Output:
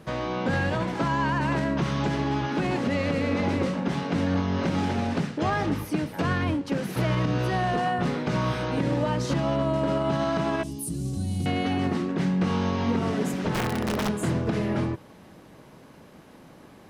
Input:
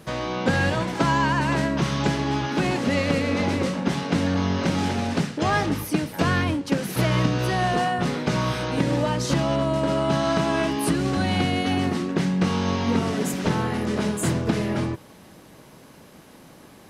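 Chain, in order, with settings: 10.63–11.46 s: FFT filter 120 Hz 0 dB, 1.7 kHz -28 dB, 9.4 kHz +11 dB; 13.53–14.09 s: integer overflow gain 17.5 dB; peak limiter -14.5 dBFS, peak gain reduction 6.5 dB; treble shelf 3.8 kHz -9 dB; trim -1 dB

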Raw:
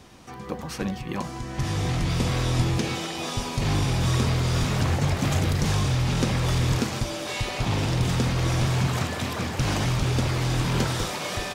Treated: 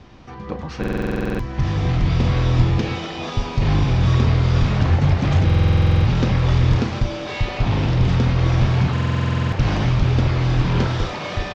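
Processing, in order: Bessel low-pass 3.6 kHz, order 8; bass shelf 96 Hz +10 dB; doubling 34 ms -11 dB; buffer glitch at 0.79/5.45/8.92 s, samples 2048, times 12; trim +2.5 dB

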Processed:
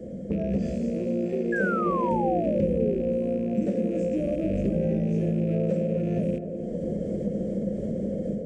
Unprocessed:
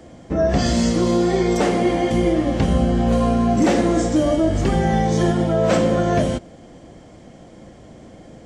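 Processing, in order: rattle on loud lows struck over -25 dBFS, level -14 dBFS; level rider gain up to 15.5 dB; FFT filter 130 Hz 0 dB, 200 Hz +14 dB, 290 Hz -1 dB, 530 Hz +10 dB, 910 Hz -27 dB, 1.7 kHz -12 dB, 4 kHz -14 dB, 8.2 kHz -5 dB; compression 4:1, threshold -28 dBFS, peak gain reduction 23 dB; de-hum 58.87 Hz, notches 4; on a send: band-passed feedback delay 261 ms, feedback 80%, band-pass 450 Hz, level -6.5 dB; on the sum: painted sound fall, 1.52–3.00 s, 370–1700 Hz -29 dBFS; tone controls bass 0 dB, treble -5 dB

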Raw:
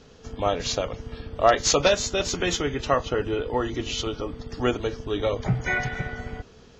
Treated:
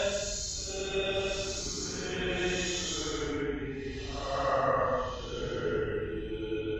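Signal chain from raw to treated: hum 50 Hz, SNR 12 dB; reverb removal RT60 1.2 s; Paulstretch 4.7×, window 0.25 s, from 1.94 s; trim -6 dB

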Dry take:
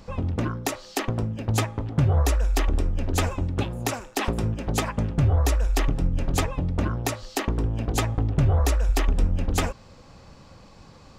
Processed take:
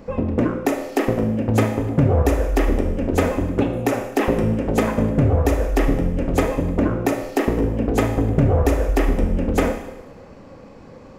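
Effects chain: graphic EQ 250/500/2000/4000/8000 Hz +8/+10/+5/-7/-4 dB; Schroeder reverb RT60 0.98 s, combs from 25 ms, DRR 5.5 dB

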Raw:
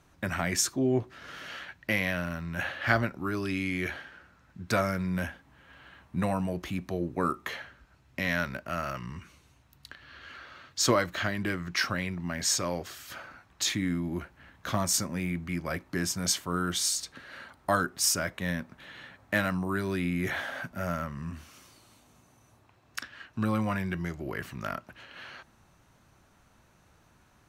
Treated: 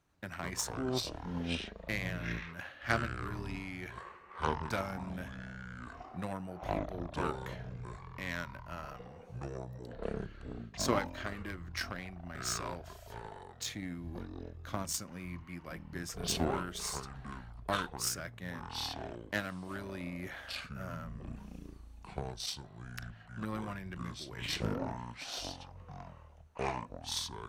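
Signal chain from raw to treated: Chebyshev shaper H 7 -21 dB, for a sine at -8 dBFS; ever faster or slower copies 91 ms, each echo -7 st, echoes 3; trim -5.5 dB

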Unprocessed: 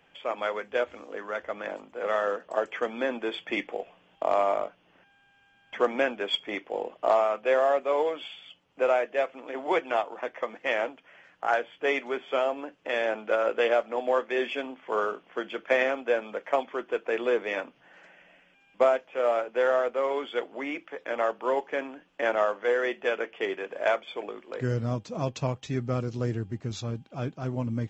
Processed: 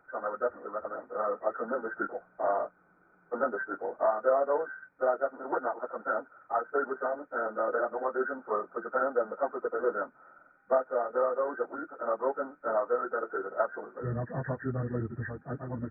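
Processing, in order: knee-point frequency compression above 1.2 kHz 4:1; plain phase-vocoder stretch 0.57×; spectral freeze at 2.78 s, 0.55 s

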